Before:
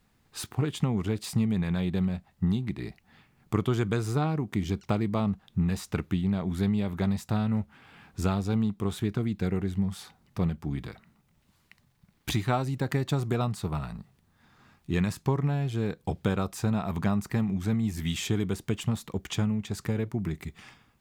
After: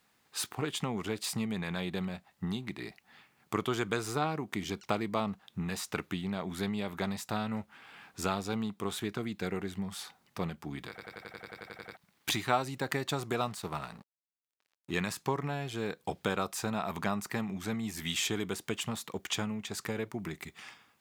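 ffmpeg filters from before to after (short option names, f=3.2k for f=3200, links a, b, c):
-filter_complex "[0:a]asettb=1/sr,asplit=3[a][b][c];[a]atrim=end=13.374[d];[b]atrim=start=13.37:end=14.91,asetpts=PTS-STARTPTS,afade=t=in:d=0.004:c=qsin,afade=t=out:st=1.536:d=0.004:c=qsin,aeval=exprs='sgn(val(0))*max(abs(val(0))-0.00282,0)':c=same[e];[c]atrim=start=14.906[f];[d][e]acrossfade=d=0.004:c1=hsin:c2=qsin[g];[g][f]acrossfade=d=0.004:c1=qsin:c2=hsin,asplit=13[h][i][j][k][l][m][n][o][p][q][r][s][t];[h]atrim=end=10.982[u];[i]atrim=start=10.888:end=10.982[v];[j]atrim=start=10.888:end=10.982[w];[k]atrim=start=10.888:end=10.982[x];[l]atrim=start=10.888:end=10.982[y];[m]atrim=start=10.888:end=10.982[z];[n]atrim=start=10.888:end=10.982[aa];[o]atrim=start=10.888:end=10.982[ab];[p]atrim=start=10.888:end=10.982[ac];[q]atrim=start=10.888:end=10.982[ad];[r]atrim=start=10.888:end=10.982[ae];[s]atrim=start=10.888:end=10.982[af];[t]atrim=start=11.968[ag];[u][v]acrossfade=d=0.004:c1=hsin:c2=hsin[ah];[ah][w]acrossfade=d=0.004:c1=hsin:c2=hsin[ai];[ai][x]acrossfade=d=0.004:c1=hsin:c2=hsin[aj];[aj][y]acrossfade=d=0.004:c1=hsin:c2=hsin[ak];[ak][z]acrossfade=d=0.004:c1=hsin:c2=hsin[al];[al][aa]acrossfade=d=0.004:c1=hsin:c2=hsin[am];[am][ab]acrossfade=d=0.004:c1=hsin:c2=hsin[an];[an][ac]acrossfade=d=0.004:c1=hsin:c2=hsin[ao];[ao][ad]acrossfade=d=0.004:c1=hsin:c2=hsin[ap];[ap][ae]acrossfade=d=0.004:c1=hsin:c2=hsin[aq];[aq][af]acrossfade=d=0.004:c1=hsin:c2=hsin[ar];[ar][ag]acrossfade=d=0.004:c1=hsin:c2=hsin,highpass=f=660:p=1,volume=2.5dB"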